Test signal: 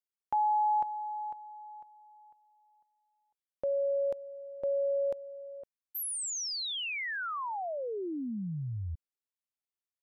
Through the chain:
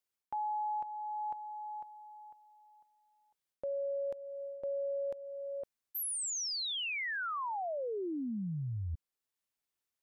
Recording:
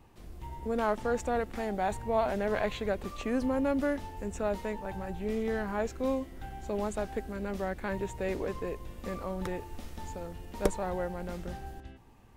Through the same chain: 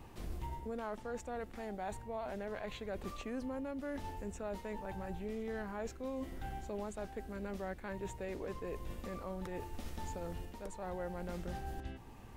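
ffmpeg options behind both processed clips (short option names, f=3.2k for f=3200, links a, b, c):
-af "areverse,acompressor=threshold=-41dB:ratio=5:attack=21:release=333:knee=1:detection=peak,areverse,alimiter=level_in=13dB:limit=-24dB:level=0:latency=1:release=442,volume=-13dB,volume=5dB"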